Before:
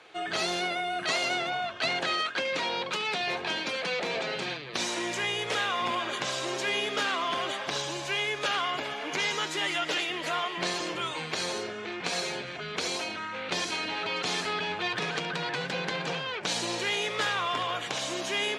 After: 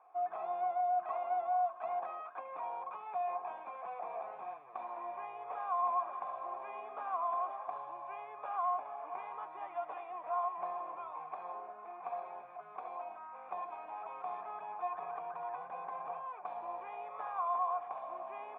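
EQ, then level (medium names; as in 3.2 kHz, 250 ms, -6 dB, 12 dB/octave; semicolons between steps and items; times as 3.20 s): cascade formant filter a; high-pass 190 Hz 6 dB/octave; peaking EQ 1.6 kHz +8 dB 1.1 oct; +1.5 dB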